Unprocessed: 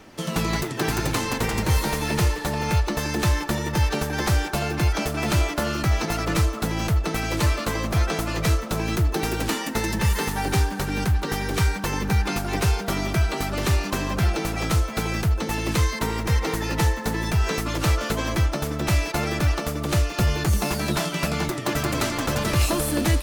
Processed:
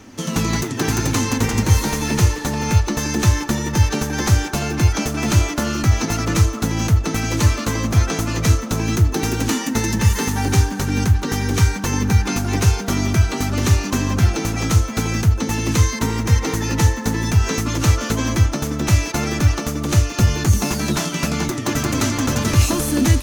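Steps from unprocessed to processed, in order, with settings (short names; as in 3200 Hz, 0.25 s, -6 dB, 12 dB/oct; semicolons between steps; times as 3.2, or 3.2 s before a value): thirty-one-band EQ 100 Hz +11 dB, 250 Hz +11 dB, 630 Hz -4 dB, 6300 Hz +9 dB; gain +2 dB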